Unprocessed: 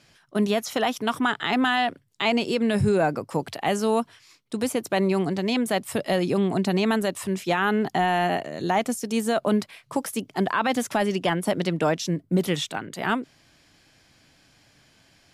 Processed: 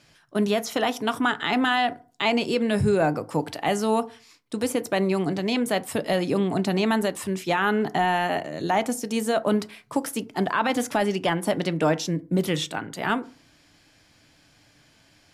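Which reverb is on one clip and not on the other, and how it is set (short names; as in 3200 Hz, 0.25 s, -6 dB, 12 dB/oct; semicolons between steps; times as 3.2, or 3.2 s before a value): FDN reverb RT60 0.39 s, low-frequency decay 1.1×, high-frequency decay 0.45×, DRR 12 dB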